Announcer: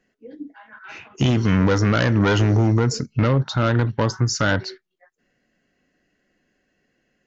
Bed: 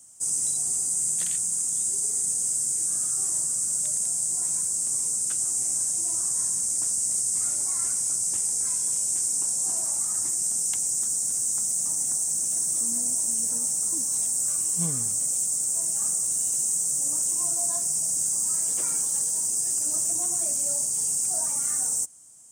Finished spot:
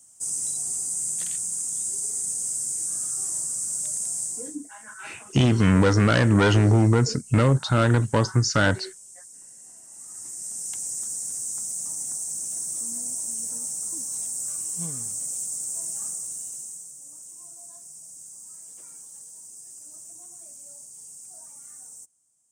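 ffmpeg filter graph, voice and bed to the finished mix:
-filter_complex "[0:a]adelay=4150,volume=0.944[s0];[1:a]volume=4.47,afade=t=out:st=4.22:d=0.35:silence=0.125893,afade=t=in:st=9.87:d=0.98:silence=0.16788,afade=t=out:st=15.92:d=1.02:silence=0.223872[s1];[s0][s1]amix=inputs=2:normalize=0"

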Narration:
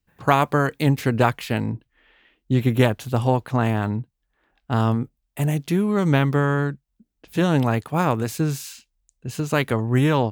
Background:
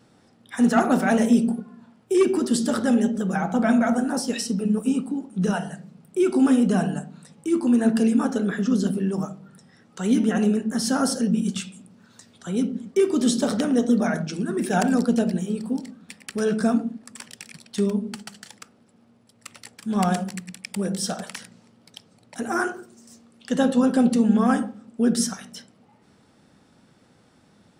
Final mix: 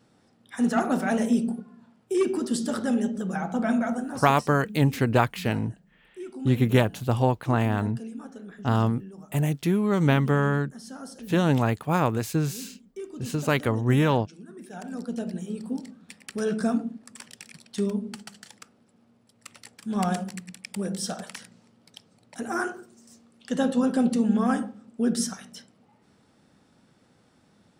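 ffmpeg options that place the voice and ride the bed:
-filter_complex "[0:a]adelay=3950,volume=0.75[s0];[1:a]volume=2.99,afade=t=out:st=3.75:d=0.78:silence=0.211349,afade=t=in:st=14.81:d=1.02:silence=0.188365[s1];[s0][s1]amix=inputs=2:normalize=0"

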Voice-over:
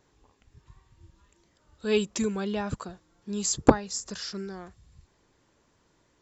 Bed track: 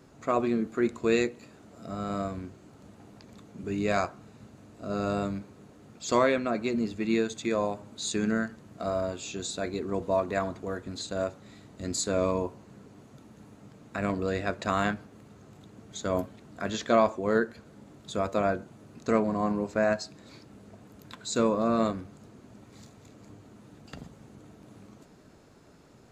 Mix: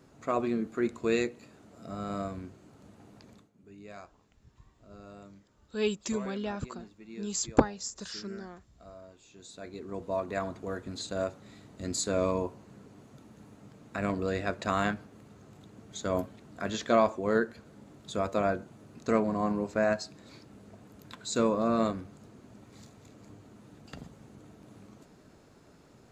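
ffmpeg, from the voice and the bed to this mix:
-filter_complex "[0:a]adelay=3900,volume=0.596[s0];[1:a]volume=5.96,afade=t=out:st=3.29:d=0.21:silence=0.141254,afade=t=in:st=9.3:d=1.49:silence=0.11885[s1];[s0][s1]amix=inputs=2:normalize=0"

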